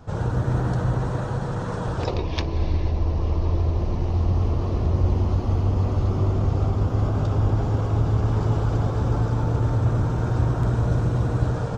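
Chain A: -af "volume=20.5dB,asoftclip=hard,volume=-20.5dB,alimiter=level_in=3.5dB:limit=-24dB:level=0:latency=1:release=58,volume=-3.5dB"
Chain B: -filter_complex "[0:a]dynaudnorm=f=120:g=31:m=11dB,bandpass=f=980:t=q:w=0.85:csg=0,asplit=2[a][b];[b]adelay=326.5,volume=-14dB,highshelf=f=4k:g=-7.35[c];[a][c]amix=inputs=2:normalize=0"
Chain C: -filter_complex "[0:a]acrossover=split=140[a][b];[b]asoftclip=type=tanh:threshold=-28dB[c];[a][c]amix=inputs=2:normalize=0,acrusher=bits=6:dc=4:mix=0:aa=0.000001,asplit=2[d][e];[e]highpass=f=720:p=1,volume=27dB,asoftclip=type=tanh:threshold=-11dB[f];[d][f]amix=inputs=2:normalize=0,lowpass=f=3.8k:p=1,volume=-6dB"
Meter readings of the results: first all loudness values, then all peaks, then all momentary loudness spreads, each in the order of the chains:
-33.0, -28.0, -20.5 LUFS; -27.5, -11.0, -11.5 dBFS; 3, 7, 1 LU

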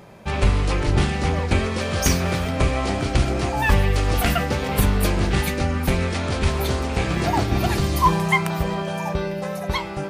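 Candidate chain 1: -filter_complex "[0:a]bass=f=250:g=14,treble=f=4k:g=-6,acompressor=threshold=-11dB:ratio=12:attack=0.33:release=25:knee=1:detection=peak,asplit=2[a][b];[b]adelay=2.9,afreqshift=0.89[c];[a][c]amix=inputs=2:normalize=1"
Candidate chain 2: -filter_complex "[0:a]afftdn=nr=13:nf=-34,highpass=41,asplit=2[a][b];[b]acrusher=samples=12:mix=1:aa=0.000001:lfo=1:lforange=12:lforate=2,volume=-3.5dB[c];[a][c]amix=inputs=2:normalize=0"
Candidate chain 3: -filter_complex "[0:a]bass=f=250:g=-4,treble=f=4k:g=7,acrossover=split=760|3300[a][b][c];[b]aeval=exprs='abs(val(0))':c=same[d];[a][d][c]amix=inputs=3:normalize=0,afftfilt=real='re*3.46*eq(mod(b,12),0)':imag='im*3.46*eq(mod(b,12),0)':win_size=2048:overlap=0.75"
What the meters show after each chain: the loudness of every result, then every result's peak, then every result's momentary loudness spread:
-20.5, -18.5, -27.0 LUFS; -7.5, -1.5, -5.0 dBFS; 5, 6, 10 LU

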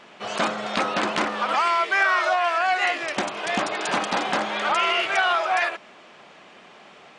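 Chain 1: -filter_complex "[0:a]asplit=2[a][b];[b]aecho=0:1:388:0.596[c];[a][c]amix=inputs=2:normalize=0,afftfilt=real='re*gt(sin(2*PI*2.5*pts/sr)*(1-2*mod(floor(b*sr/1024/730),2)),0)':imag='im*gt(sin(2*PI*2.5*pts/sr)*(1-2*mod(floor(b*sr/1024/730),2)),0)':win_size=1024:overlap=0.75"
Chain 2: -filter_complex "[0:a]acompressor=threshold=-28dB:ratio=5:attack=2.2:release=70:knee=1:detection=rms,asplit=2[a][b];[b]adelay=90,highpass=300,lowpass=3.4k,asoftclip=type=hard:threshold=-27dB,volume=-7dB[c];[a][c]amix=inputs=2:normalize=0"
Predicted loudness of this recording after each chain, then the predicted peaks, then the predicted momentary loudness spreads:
-25.0, -30.5 LUFS; -11.0, -18.5 dBFS; 7, 17 LU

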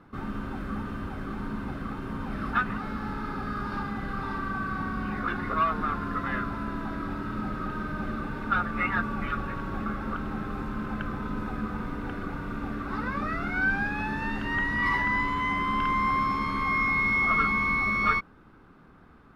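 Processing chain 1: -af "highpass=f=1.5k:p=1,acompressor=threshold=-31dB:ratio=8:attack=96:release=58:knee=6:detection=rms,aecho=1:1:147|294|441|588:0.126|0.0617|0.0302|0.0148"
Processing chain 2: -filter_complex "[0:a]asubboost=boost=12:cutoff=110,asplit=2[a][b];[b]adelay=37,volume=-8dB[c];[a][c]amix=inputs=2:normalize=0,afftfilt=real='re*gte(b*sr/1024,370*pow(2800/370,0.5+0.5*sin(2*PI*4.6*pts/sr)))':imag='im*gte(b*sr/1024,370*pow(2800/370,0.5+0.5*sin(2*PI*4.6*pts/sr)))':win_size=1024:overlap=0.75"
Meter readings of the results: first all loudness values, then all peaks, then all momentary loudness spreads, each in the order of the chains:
-34.5, -31.0 LUFS; -19.5, -14.5 dBFS; 16, 18 LU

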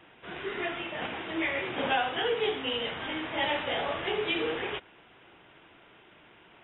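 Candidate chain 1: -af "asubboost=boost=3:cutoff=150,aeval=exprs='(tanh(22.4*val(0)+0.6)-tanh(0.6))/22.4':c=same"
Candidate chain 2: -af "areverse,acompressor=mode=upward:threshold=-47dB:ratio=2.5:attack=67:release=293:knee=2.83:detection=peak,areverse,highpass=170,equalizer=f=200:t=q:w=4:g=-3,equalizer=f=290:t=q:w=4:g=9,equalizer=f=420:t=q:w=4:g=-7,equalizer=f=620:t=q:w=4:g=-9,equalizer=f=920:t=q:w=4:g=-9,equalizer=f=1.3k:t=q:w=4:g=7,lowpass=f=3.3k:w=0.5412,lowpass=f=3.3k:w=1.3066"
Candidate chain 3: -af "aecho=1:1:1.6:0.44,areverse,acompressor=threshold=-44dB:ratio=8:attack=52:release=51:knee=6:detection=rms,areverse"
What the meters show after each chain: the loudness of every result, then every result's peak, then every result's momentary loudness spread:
-35.0, -32.0, -42.0 LUFS; -23.5, -16.5, -30.0 dBFS; 6, 21, 14 LU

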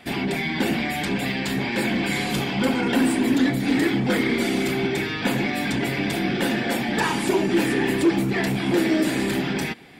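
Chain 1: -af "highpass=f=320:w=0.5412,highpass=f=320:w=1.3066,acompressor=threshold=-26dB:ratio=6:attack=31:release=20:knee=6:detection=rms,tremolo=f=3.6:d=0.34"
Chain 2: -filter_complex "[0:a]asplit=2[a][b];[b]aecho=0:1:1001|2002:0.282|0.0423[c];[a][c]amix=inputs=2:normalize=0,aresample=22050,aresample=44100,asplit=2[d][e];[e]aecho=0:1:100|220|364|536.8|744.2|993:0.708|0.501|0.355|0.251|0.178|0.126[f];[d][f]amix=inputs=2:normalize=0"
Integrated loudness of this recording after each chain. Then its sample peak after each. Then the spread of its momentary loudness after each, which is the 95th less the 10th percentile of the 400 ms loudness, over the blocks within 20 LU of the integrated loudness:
-28.5, -19.5 LUFS; -14.0, -5.5 dBFS; 2, 5 LU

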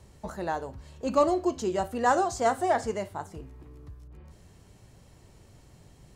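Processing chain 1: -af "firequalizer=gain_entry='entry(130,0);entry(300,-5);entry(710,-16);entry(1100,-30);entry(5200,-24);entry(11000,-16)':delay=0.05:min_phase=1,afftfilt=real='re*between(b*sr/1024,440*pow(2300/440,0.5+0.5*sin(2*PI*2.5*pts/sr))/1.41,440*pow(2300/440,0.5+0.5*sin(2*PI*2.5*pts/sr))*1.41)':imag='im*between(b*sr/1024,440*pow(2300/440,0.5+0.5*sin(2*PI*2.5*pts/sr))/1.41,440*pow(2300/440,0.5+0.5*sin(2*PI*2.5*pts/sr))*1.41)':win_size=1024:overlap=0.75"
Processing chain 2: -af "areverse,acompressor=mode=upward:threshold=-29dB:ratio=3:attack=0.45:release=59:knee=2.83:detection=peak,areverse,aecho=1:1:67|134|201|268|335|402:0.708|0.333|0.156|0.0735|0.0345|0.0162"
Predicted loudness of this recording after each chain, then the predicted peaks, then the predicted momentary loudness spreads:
-45.5, -27.0 LUFS; -25.0, -10.0 dBFS; 20, 18 LU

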